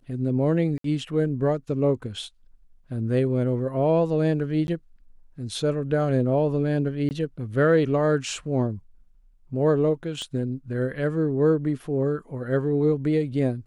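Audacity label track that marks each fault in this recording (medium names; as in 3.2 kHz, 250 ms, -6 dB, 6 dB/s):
0.780000	0.840000	dropout 63 ms
4.670000	4.680000	dropout 11 ms
7.090000	7.110000	dropout 19 ms
10.220000	10.220000	pop -23 dBFS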